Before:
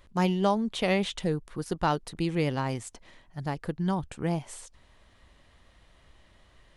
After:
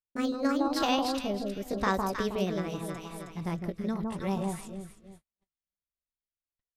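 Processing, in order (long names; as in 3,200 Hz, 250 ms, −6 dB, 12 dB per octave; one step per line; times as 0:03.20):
pitch glide at a constant tempo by +6 semitones ending unshifted
delay that swaps between a low-pass and a high-pass 158 ms, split 1,100 Hz, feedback 63%, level −2.5 dB
noise gate −47 dBFS, range −47 dB
rotating-speaker cabinet horn 0.85 Hz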